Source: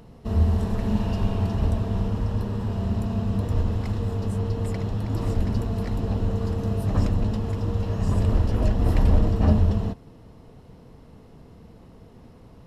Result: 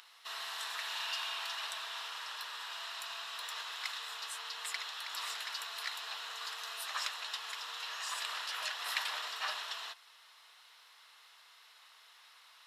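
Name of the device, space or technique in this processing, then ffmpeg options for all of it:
headphones lying on a table: -af "highpass=frequency=1300:width=0.5412,highpass=frequency=1300:width=1.3066,equalizer=frequency=3700:width_type=o:width=0.48:gain=7.5,volume=5dB"

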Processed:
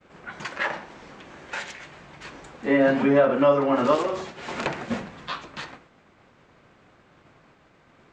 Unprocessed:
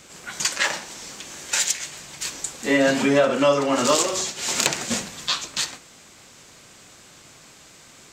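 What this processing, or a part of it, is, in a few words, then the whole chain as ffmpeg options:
hearing-loss simulation: -af "lowpass=1700,agate=range=-33dB:threshold=-49dB:ratio=3:detection=peak"

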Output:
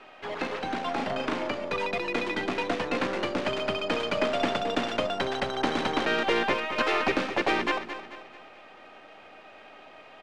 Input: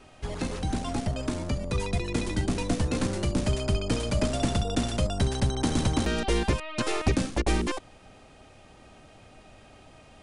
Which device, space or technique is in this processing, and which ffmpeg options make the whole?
crystal radio: -filter_complex "[0:a]equalizer=frequency=2200:width_type=o:width=2.8:gain=5.5,asettb=1/sr,asplit=3[link_01][link_02][link_03];[link_01]atrim=end=0.954[link_04];[link_02]atrim=start=0.95:end=1.5,asetpts=PTS-STARTPTS,afade=type=in:duration=0.004:curve=qsin,afade=type=out:start_time=0.546:duration=0.004:curve=qsin,asplit=2[link_05][link_06];[link_06]adelay=38,volume=-2.5dB[link_07];[link_05][link_07]amix=inputs=2:normalize=0,atrim=end_sample=24255[link_08];[link_03]atrim=start=1.496[link_09];[link_04][link_08]acrossfade=duration=0.004:curve1=hsin:curve2=qsin[link_10];[link_10][link_09]acrossfade=duration=0.004:curve1=qsin:curve2=hsin,highpass=360,lowpass=2800,aeval=exprs='if(lt(val(0),0),0.708*val(0),val(0))':channel_layout=same,aecho=1:1:219|438|657|876|1095:0.299|0.128|0.0552|0.0237|0.0102,volume=4dB"

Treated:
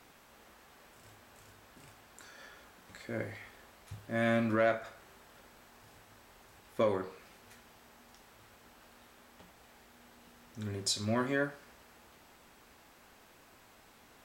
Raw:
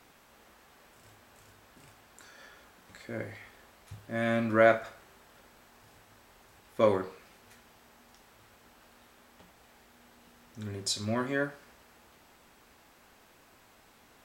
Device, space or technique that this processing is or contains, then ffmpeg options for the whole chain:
soft clipper into limiter: -af "asoftclip=type=tanh:threshold=-12.5dB,alimiter=limit=-20dB:level=0:latency=1:release=379"

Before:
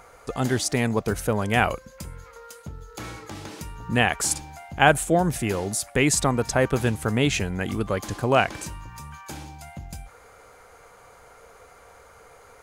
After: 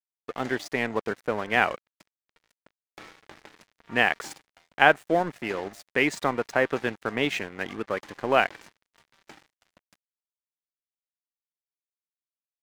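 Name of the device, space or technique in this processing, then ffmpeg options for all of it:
pocket radio on a weak battery: -af "highpass=280,lowpass=3700,aeval=exprs='sgn(val(0))*max(abs(val(0))-0.0119,0)':channel_layout=same,equalizer=frequency=1900:width_type=o:width=0.54:gain=4.5,volume=-1dB"

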